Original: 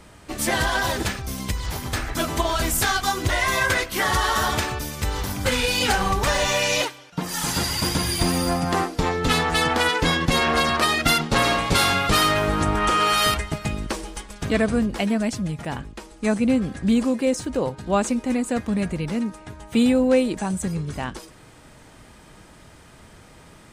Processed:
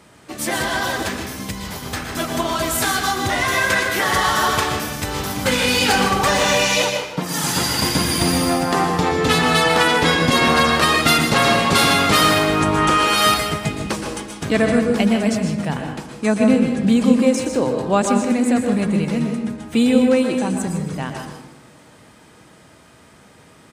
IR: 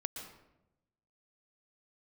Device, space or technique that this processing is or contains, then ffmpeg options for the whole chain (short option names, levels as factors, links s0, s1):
far laptop microphone: -filter_complex "[1:a]atrim=start_sample=2205[s0];[0:a][s0]afir=irnorm=-1:irlink=0,highpass=110,dynaudnorm=f=370:g=21:m=1.68,aecho=1:1:155:0.237,volume=1.19"